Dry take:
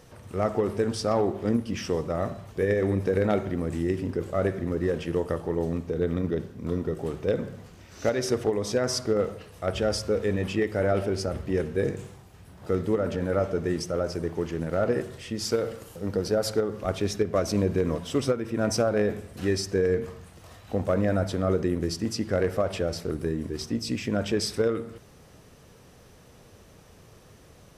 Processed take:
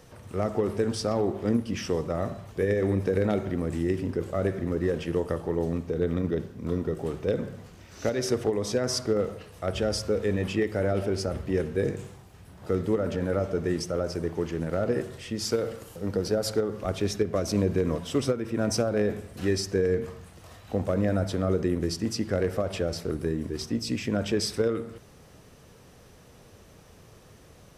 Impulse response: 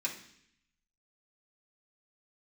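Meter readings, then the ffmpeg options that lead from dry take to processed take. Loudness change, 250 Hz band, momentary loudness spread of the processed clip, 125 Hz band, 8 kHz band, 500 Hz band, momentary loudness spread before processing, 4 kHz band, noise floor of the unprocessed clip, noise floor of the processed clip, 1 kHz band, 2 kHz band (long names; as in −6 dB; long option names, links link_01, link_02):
−1.0 dB, 0.0 dB, 6 LU, 0.0 dB, 0.0 dB, −1.0 dB, 6 LU, 0.0 dB, −53 dBFS, −53 dBFS, −3.0 dB, −1.5 dB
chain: -filter_complex "[0:a]acrossover=split=470|3000[link_01][link_02][link_03];[link_02]acompressor=threshold=-29dB:ratio=6[link_04];[link_01][link_04][link_03]amix=inputs=3:normalize=0"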